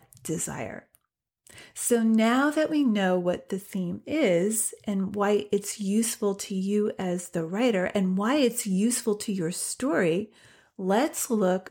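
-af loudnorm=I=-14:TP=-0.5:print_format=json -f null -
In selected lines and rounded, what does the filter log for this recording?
"input_i" : "-26.3",
"input_tp" : "-10.5",
"input_lra" : "1.0",
"input_thresh" : "-36.7",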